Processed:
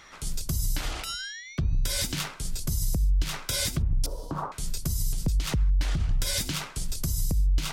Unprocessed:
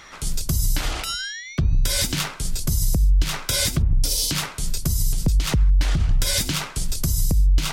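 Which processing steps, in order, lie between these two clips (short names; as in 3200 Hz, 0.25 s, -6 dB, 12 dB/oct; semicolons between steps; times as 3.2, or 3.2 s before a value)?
4.06–4.52 EQ curve 180 Hz 0 dB, 1100 Hz +11 dB, 2200 Hz -24 dB; gain -6.5 dB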